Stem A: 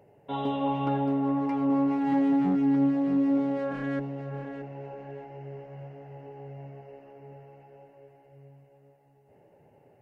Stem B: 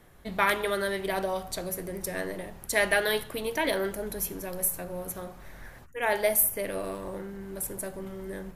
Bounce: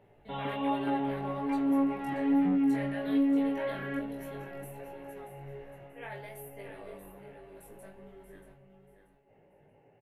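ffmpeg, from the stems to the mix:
-filter_complex "[0:a]equalizer=f=2200:w=1.5:g=3,volume=0.891[s0];[1:a]alimiter=limit=0.141:level=0:latency=1:release=143,flanger=delay=20:depth=2.8:speed=0.6,volume=0.355,asplit=2[s1][s2];[s2]volume=0.316,aecho=0:1:633|1266|1899|2532:1|0.26|0.0676|0.0176[s3];[s0][s1][s3]amix=inputs=3:normalize=0,highshelf=f=4000:t=q:w=1.5:g=-8,flanger=delay=17.5:depth=2.7:speed=1.2"

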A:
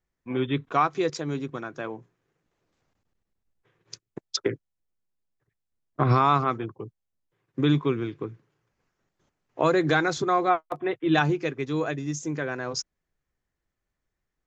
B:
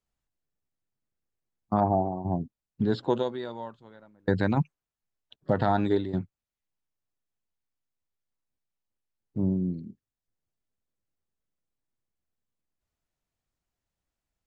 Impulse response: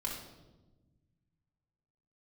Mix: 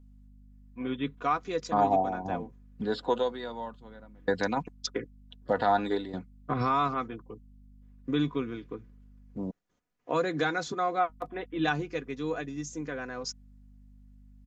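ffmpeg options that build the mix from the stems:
-filter_complex "[0:a]bandreject=f=840:w=12,adelay=500,volume=0.473[s0];[1:a]acrossover=split=380|3000[s1][s2][s3];[s1]acompressor=threshold=0.00398:ratio=2[s4];[s4][s2][s3]amix=inputs=3:normalize=0,aeval=exprs='val(0)+0.002*(sin(2*PI*50*n/s)+sin(2*PI*2*50*n/s)/2+sin(2*PI*3*50*n/s)/3+sin(2*PI*4*50*n/s)/4+sin(2*PI*5*50*n/s)/5)':c=same,volume=1.06,asplit=3[s5][s6][s7];[s5]atrim=end=9.51,asetpts=PTS-STARTPTS,afade=t=out:st=9.506:d=0.004:c=hsin[s8];[s6]atrim=start=9.51:end=11.09,asetpts=PTS-STARTPTS,volume=0[s9];[s7]atrim=start=11.09,asetpts=PTS-STARTPTS,afade=t=in:d=0.004:c=hsin[s10];[s8][s9][s10]concat=n=3:v=0:a=1[s11];[s0][s11]amix=inputs=2:normalize=0,aecho=1:1:4.1:0.47"

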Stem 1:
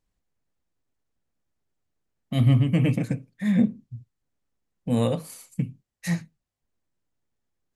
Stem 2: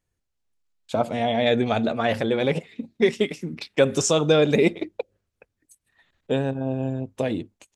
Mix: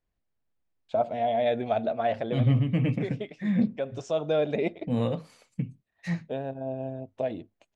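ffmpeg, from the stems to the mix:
-filter_complex "[0:a]volume=0.631,asplit=2[s0][s1];[1:a]equalizer=f=660:t=o:w=0.46:g=12,bandreject=f=1200:w=28,volume=0.299[s2];[s1]apad=whole_len=341909[s3];[s2][s3]sidechaincompress=threshold=0.0447:ratio=8:attack=12:release=1220[s4];[s0][s4]amix=inputs=2:normalize=0,lowpass=3800"

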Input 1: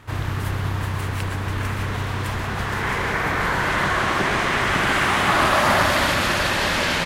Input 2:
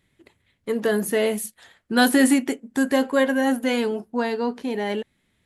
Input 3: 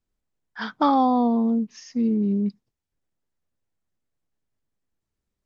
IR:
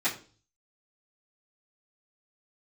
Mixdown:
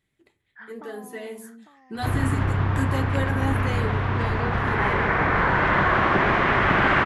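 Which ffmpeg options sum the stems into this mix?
-filter_complex "[0:a]lowpass=2100,adelay=1950,volume=1.26[s0];[1:a]volume=0.335,asplit=2[s1][s2];[s2]volume=0.158[s3];[2:a]acompressor=threshold=0.0631:ratio=6,lowpass=f=1900:t=q:w=4.9,volume=0.106,asplit=3[s4][s5][s6];[s5]volume=0.282[s7];[s6]apad=whole_len=240376[s8];[s1][s8]sidechaincompress=threshold=0.00224:ratio=8:attack=12:release=229[s9];[3:a]atrim=start_sample=2205[s10];[s3][s10]afir=irnorm=-1:irlink=0[s11];[s7]aecho=0:1:852:1[s12];[s0][s9][s4][s11][s12]amix=inputs=5:normalize=0"

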